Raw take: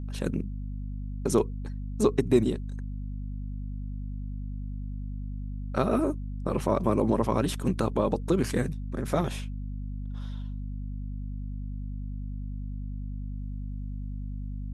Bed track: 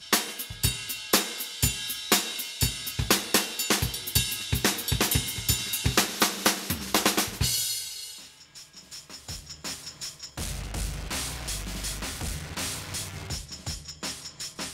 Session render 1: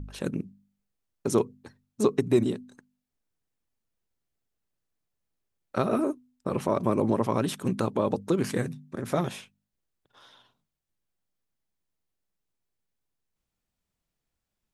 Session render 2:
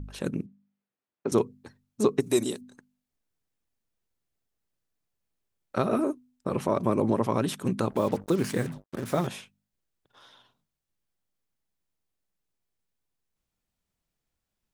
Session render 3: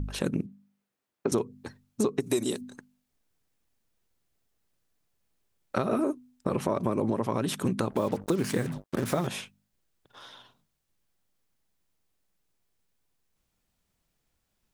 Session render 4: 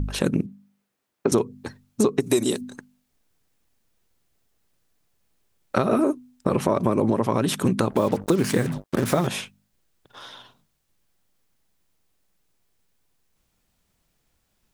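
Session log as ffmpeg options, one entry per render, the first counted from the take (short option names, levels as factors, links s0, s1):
-af "bandreject=f=50:t=h:w=4,bandreject=f=100:t=h:w=4,bandreject=f=150:t=h:w=4,bandreject=f=200:t=h:w=4,bandreject=f=250:t=h:w=4"
-filter_complex "[0:a]asettb=1/sr,asplit=3[s0][s1][s2];[s0]atrim=end=0.464[s3];[s1]atrim=start=0.46:end=1.32,asetpts=PTS-STARTPTS,afade=t=in:d=0.004:c=qsin,afade=t=out:st=0.856:d=0.004:c=qsin,highpass=210,lowpass=2700[s4];[s2]atrim=start=1.316[s5];[s3][s4]acrossfade=d=0.004:c1=hsin:c2=qsin[s6];[s6][s5]acrossfade=d=0.004:c1=qsin:c2=hsin,asplit=3[s7][s8][s9];[s7]afade=t=out:st=2.2:d=0.02[s10];[s8]bass=f=250:g=-10,treble=f=4000:g=15,afade=t=in:st=2.2:d=0.02,afade=t=out:st=2.6:d=0.02[s11];[s9]afade=t=in:st=2.6:d=0.02[s12];[s10][s11][s12]amix=inputs=3:normalize=0,asettb=1/sr,asplit=3[s13][s14][s15];[s13]atrim=end=7.904[s16];[s14]atrim=start=7.9:end=9.27,asetpts=PTS-STARTPTS,afade=t=in:d=0.004:c=qsin,afade=t=out:st=1.366:d=0.004:c=qsin,acrusher=bits=6:mix=0:aa=0.5[s17];[s15]atrim=start=9.266[s18];[s16][s17]acrossfade=d=0.004:c1=hsin:c2=qsin[s19];[s19][s18]acrossfade=d=0.004:c1=qsin:c2=hsin"
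-filter_complex "[0:a]asplit=2[s0][s1];[s1]alimiter=limit=0.112:level=0:latency=1:release=240,volume=1.12[s2];[s0][s2]amix=inputs=2:normalize=0,acompressor=threshold=0.0631:ratio=4"
-af "volume=2.11"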